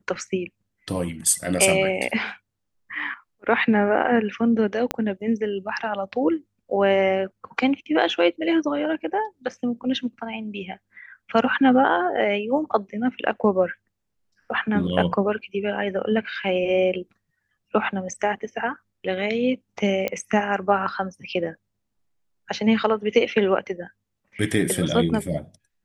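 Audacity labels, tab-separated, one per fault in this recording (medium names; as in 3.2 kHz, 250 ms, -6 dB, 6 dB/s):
4.910000	4.910000	pop -8 dBFS
20.080000	20.080000	pop -11 dBFS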